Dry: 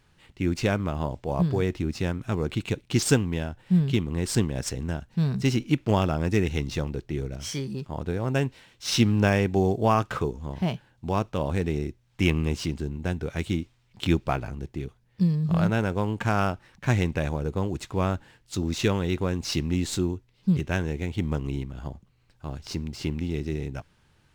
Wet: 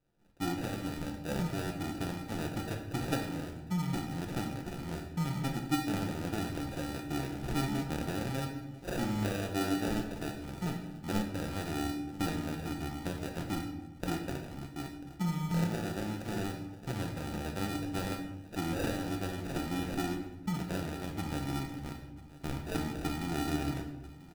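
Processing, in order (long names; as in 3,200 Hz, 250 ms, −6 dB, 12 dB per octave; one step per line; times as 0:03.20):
camcorder AGC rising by 8.2 dB per second
mains-hum notches 60/120/180 Hz
in parallel at −7 dB: bit reduction 5 bits
on the sum: tuned comb filter 290 Hz, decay 0.39 s, harmonics odd, mix 90%
decimation without filtering 41×
on a send: single-tap delay 991 ms −20 dB
on the sum: rectangular room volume 420 cubic metres, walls mixed, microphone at 0.85 metres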